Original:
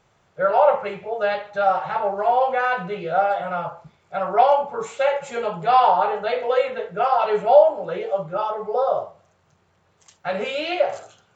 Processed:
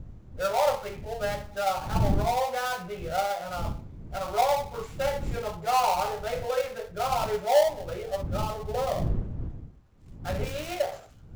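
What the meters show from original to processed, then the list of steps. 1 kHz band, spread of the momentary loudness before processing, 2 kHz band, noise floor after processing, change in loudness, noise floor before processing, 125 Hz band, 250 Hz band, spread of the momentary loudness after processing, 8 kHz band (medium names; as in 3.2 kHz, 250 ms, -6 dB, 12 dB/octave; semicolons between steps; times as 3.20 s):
-8.5 dB, 12 LU, -7.5 dB, -50 dBFS, -8.0 dB, -63 dBFS, +8.5 dB, -0.5 dB, 12 LU, no reading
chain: dead-time distortion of 0.13 ms; wind noise 120 Hz -27 dBFS; trim -8 dB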